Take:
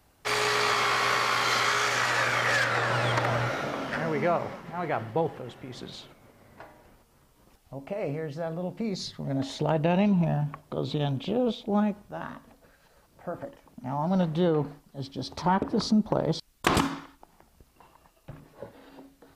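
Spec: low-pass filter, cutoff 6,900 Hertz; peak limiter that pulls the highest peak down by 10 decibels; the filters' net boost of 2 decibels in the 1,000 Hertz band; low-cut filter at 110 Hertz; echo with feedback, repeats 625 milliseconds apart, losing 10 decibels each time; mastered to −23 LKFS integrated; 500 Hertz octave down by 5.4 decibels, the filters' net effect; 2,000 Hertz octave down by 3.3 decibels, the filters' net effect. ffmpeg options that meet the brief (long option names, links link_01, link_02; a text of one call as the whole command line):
ffmpeg -i in.wav -af "highpass=110,lowpass=6900,equalizer=frequency=500:width_type=o:gain=-8.5,equalizer=frequency=1000:width_type=o:gain=6.5,equalizer=frequency=2000:width_type=o:gain=-6,alimiter=limit=-18.5dB:level=0:latency=1,aecho=1:1:625|1250|1875|2500:0.316|0.101|0.0324|0.0104,volume=7dB" out.wav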